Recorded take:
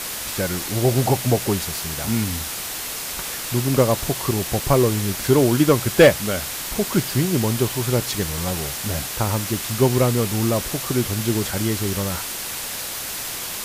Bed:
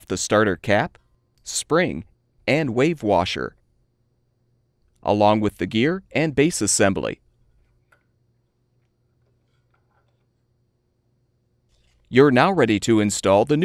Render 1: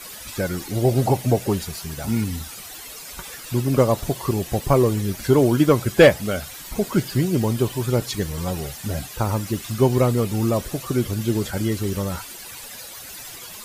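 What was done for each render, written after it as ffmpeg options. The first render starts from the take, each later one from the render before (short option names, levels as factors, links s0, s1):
-af "afftdn=nr=13:nf=-30"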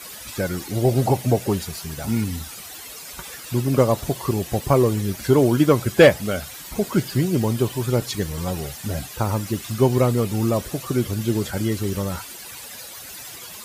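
-af "highpass=47"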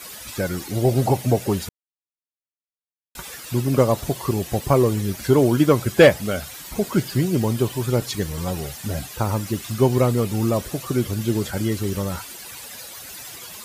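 -filter_complex "[0:a]asplit=3[s0][s1][s2];[s0]atrim=end=1.69,asetpts=PTS-STARTPTS,afade=t=out:st=1.686:d=0.004:c=hsin[s3];[s1]atrim=start=1.69:end=3.15,asetpts=PTS-STARTPTS,volume=0[s4];[s2]atrim=start=3.15,asetpts=PTS-STARTPTS,afade=t=in:d=0.004:c=hsin[s5];[s3][s4][s5]concat=n=3:v=0:a=1"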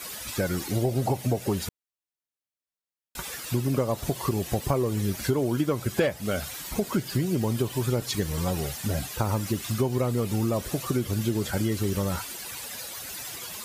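-af "acompressor=threshold=0.0794:ratio=6"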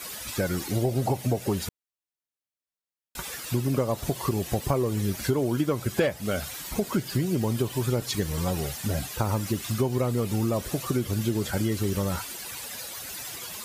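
-af anull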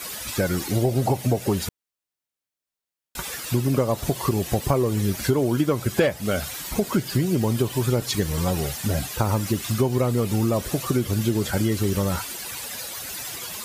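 -af "volume=1.58"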